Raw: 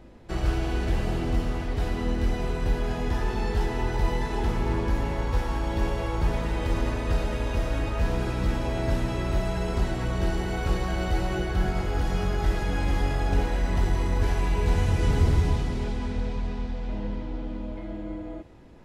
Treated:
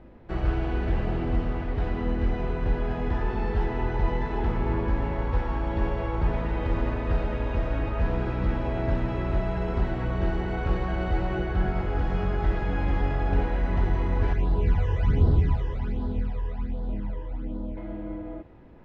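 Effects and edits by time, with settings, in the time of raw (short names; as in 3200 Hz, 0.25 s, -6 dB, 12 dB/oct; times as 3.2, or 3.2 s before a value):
14.33–17.77 phaser stages 12, 1.3 Hz, lowest notch 220–2300 Hz
whole clip: LPF 2300 Hz 12 dB/oct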